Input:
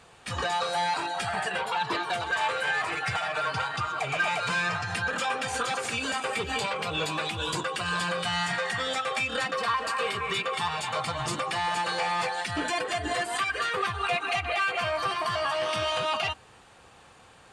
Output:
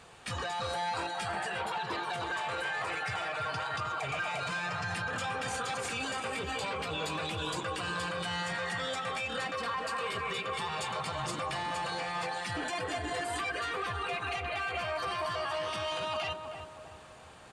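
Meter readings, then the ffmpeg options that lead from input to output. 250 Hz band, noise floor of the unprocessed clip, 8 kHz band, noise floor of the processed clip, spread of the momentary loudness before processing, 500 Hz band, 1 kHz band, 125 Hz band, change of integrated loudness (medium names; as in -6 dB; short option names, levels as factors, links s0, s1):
-4.0 dB, -54 dBFS, -5.5 dB, -49 dBFS, 3 LU, -5.0 dB, -6.0 dB, -3.5 dB, -6.0 dB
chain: -filter_complex "[0:a]acompressor=threshold=0.0158:ratio=1.5,alimiter=level_in=1.5:limit=0.0631:level=0:latency=1:release=11,volume=0.668,asplit=2[s0][s1];[s1]adelay=316,lowpass=f=1100:p=1,volume=0.562,asplit=2[s2][s3];[s3]adelay=316,lowpass=f=1100:p=1,volume=0.52,asplit=2[s4][s5];[s5]adelay=316,lowpass=f=1100:p=1,volume=0.52,asplit=2[s6][s7];[s7]adelay=316,lowpass=f=1100:p=1,volume=0.52,asplit=2[s8][s9];[s9]adelay=316,lowpass=f=1100:p=1,volume=0.52,asplit=2[s10][s11];[s11]adelay=316,lowpass=f=1100:p=1,volume=0.52,asplit=2[s12][s13];[s13]adelay=316,lowpass=f=1100:p=1,volume=0.52[s14];[s2][s4][s6][s8][s10][s12][s14]amix=inputs=7:normalize=0[s15];[s0][s15]amix=inputs=2:normalize=0"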